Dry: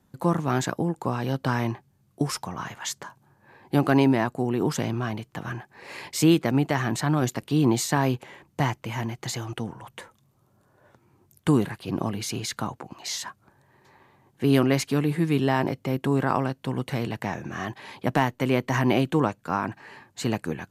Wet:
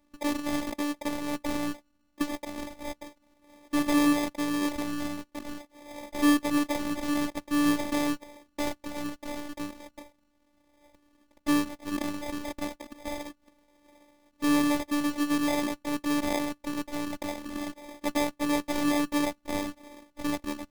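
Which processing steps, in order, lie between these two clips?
one diode to ground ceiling -12.5 dBFS; sample-and-hold 31×; robotiser 293 Hz

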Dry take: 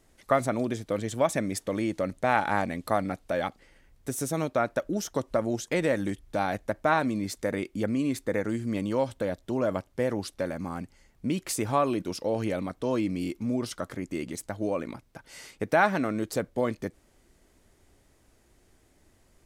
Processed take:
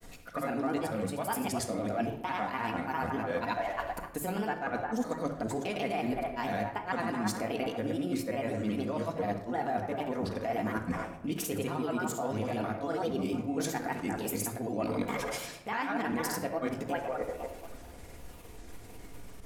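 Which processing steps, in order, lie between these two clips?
repeated pitch sweeps +5 st, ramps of 0.77 s; band-limited delay 0.255 s, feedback 36%, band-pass 980 Hz, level -9 dB; in parallel at 0 dB: limiter -21 dBFS, peak gain reduction 11.5 dB; on the sum: grains, pitch spread up and down by 3 st; bell 13000 Hz +4 dB 0.24 oct; reverse; compressor 10:1, threshold -39 dBFS, peak gain reduction 22.5 dB; reverse; reverb RT60 0.80 s, pre-delay 4 ms, DRR 4 dB; gain +7.5 dB

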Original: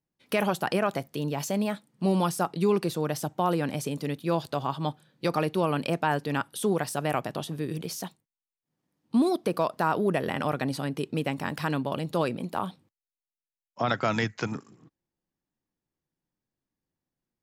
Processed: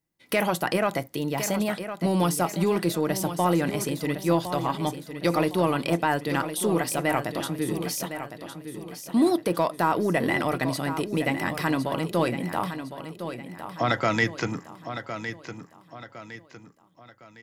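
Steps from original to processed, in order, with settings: high shelf 7500 Hz +6 dB; small resonant body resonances 2000 Hz, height 11 dB, ringing for 30 ms; in parallel at -9 dB: soft clip -24 dBFS, distortion -10 dB; on the sum: feedback echo 1.059 s, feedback 39%, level -10 dB; reverb RT60 0.20 s, pre-delay 3 ms, DRR 12 dB

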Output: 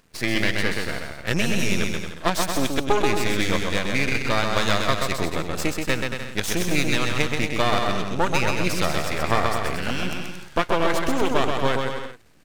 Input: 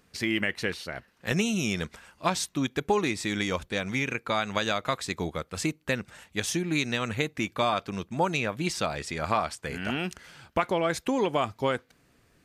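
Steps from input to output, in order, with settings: half-wave rectifier; on a send: bouncing-ball echo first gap 0.13 s, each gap 0.75×, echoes 5; on the sum: gain +7 dB

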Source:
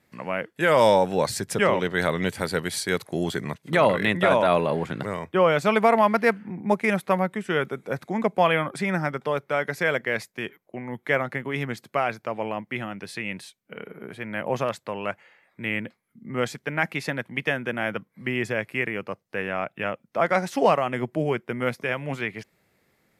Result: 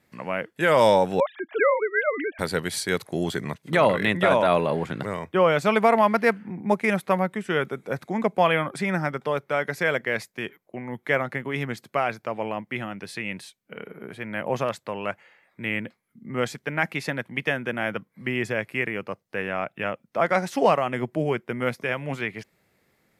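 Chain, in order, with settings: 1.2–2.39 sine-wave speech

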